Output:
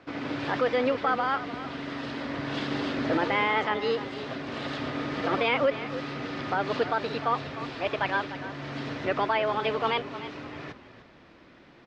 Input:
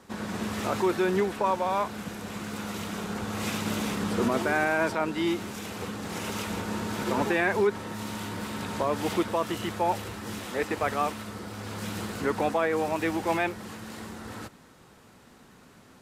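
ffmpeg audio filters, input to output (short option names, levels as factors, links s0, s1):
-filter_complex "[0:a]asetrate=59535,aresample=44100,lowpass=f=4400:w=0.5412,lowpass=f=4400:w=1.3066,asplit=4[s0][s1][s2][s3];[s1]adelay=301,afreqshift=-33,volume=0.224[s4];[s2]adelay=602,afreqshift=-66,volume=0.0716[s5];[s3]adelay=903,afreqshift=-99,volume=0.0229[s6];[s0][s4][s5][s6]amix=inputs=4:normalize=0"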